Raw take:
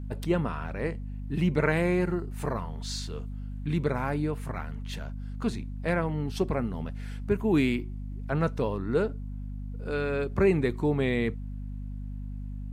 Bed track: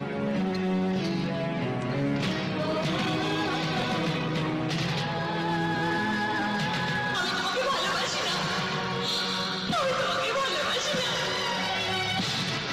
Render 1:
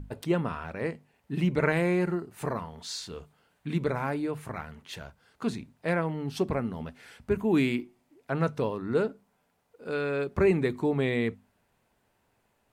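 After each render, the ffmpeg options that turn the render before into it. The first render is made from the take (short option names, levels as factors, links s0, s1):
-af "bandreject=f=50:t=h:w=6,bandreject=f=100:t=h:w=6,bandreject=f=150:t=h:w=6,bandreject=f=200:t=h:w=6,bandreject=f=250:t=h:w=6"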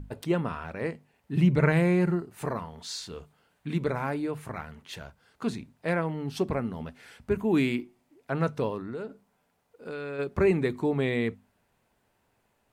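-filter_complex "[0:a]asettb=1/sr,asplit=3[s0][s1][s2];[s0]atrim=end=1.354[s3];[s1]atrim=start=1.35:end=2.21,asetpts=PTS-STARTPTS,afade=t=in:d=0.004:c=qsin,afade=t=out:st=0.856:d=0.004:c=qsin,equalizer=f=130:w=1.5:g=9.5[s4];[s2]atrim=start=2.206[s5];[s3][s4]acrossfade=d=0.004:c1=hsin:c2=qsin[s6];[s6][s5]acrossfade=d=0.004:c1=qsin:c2=hsin,asplit=3[s7][s8][s9];[s7]afade=t=out:st=8.81:d=0.02[s10];[s8]acompressor=threshold=0.02:ratio=4:attack=3.2:release=140:knee=1:detection=peak,afade=t=in:st=8.81:d=0.02,afade=t=out:st=10.18:d=0.02[s11];[s9]afade=t=in:st=10.18:d=0.02[s12];[s10][s11][s12]amix=inputs=3:normalize=0"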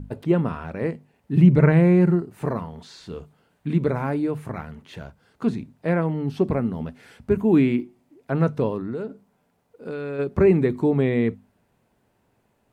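-filter_complex "[0:a]acrossover=split=3100[s0][s1];[s1]acompressor=threshold=0.00316:ratio=4:attack=1:release=60[s2];[s0][s2]amix=inputs=2:normalize=0,equalizer=f=190:w=0.32:g=8"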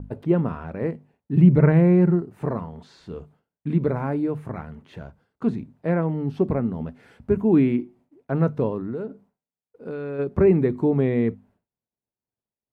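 -af "agate=range=0.0224:threshold=0.00355:ratio=3:detection=peak,highshelf=f=2300:g=-11"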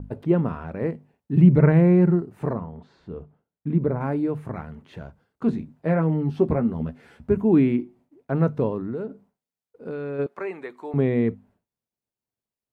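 -filter_complex "[0:a]asettb=1/sr,asplit=3[s0][s1][s2];[s0]atrim=end=2.534[s3];[s1]atrim=start=2.53:end=4.01,asetpts=PTS-STARTPTS,afade=t=in:d=0.004:c=qsin,afade=t=out:st=1.476:d=0.004:c=qsin,lowpass=f=1100:p=1[s4];[s2]atrim=start=4.006[s5];[s3][s4]acrossfade=d=0.004:c1=hsin:c2=qsin[s6];[s6][s5]acrossfade=d=0.004:c1=qsin:c2=hsin,asettb=1/sr,asplit=3[s7][s8][s9];[s7]atrim=end=5.474[s10];[s8]atrim=start=5.47:end=7.3,asetpts=PTS-STARTPTS,afade=t=in:d=0.004:c=qsin,afade=t=out:st=1.826:d=0.004:c=qsin,asplit=2[s11][s12];[s12]adelay=13,volume=0.501[s13];[s11][s13]amix=inputs=2:normalize=0,atrim=end_sample=80703[s14];[s9]atrim=start=7.296[s15];[s10][s14]acrossfade=d=0.004:c1=hsin:c2=qsin[s16];[s16][s15]acrossfade=d=0.004:c1=qsin:c2=hsin,asettb=1/sr,asplit=3[s17][s18][s19];[s17]atrim=end=10.264[s20];[s18]atrim=start=10.26:end=10.94,asetpts=PTS-STARTPTS,afade=t=in:d=0.004:c=qsin,afade=t=out:st=0.676:d=0.004:c=qsin,highpass=900[s21];[s19]atrim=start=10.936[s22];[s20][s21]acrossfade=d=0.004:c1=hsin:c2=qsin[s23];[s23][s22]acrossfade=d=0.004:c1=qsin:c2=hsin"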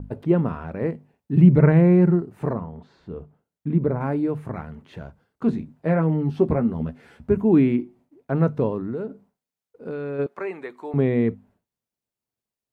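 -af "volume=1.12"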